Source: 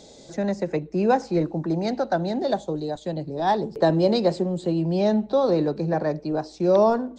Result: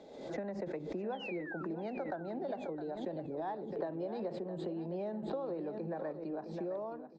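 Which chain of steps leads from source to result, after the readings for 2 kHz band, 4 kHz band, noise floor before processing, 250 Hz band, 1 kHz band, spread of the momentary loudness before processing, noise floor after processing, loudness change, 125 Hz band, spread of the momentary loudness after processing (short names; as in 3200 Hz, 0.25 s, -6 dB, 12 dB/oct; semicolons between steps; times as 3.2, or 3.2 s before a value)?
-12.0 dB, -19.0 dB, -48 dBFS, -16.0 dB, -17.5 dB, 9 LU, -48 dBFS, -16.5 dB, -19.0 dB, 2 LU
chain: ending faded out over 0.98 s; three-band isolator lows -13 dB, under 210 Hz, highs -17 dB, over 2800 Hz; painted sound fall, 1.12–1.63, 1300–3500 Hz -36 dBFS; compressor 6:1, threshold -33 dBFS, peak gain reduction 17 dB; high shelf 5800 Hz -9.5 dB; on a send: feedback echo 0.662 s, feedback 34%, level -11 dB; on the sum: backwards sustainer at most 57 dB/s; gain -4.5 dB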